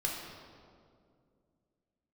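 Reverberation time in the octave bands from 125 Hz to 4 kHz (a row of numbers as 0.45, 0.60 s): 3.0, 3.0, 2.6, 2.0, 1.5, 1.3 s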